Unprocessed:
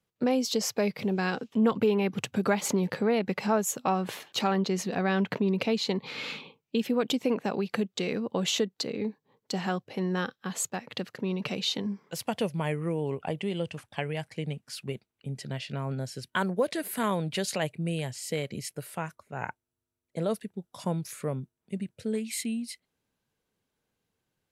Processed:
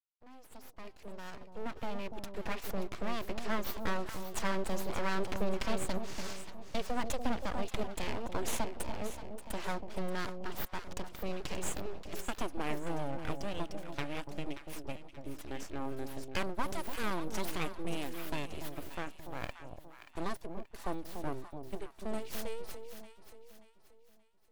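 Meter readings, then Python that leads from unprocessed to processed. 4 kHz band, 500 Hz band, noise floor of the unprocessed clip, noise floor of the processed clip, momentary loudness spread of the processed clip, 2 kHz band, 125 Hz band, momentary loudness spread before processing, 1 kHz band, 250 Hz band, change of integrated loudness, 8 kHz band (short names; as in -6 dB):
-10.5 dB, -10.0 dB, -85 dBFS, -59 dBFS, 12 LU, -6.5 dB, -11.0 dB, 11 LU, -5.5 dB, -11.0 dB, -9.5 dB, -9.5 dB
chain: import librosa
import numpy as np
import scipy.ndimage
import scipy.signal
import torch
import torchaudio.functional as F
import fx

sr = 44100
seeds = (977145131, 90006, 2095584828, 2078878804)

y = fx.fade_in_head(x, sr, length_s=4.28)
y = np.abs(y)
y = fx.echo_alternate(y, sr, ms=290, hz=880.0, feedback_pct=61, wet_db=-6.5)
y = y * librosa.db_to_amplitude(-4.5)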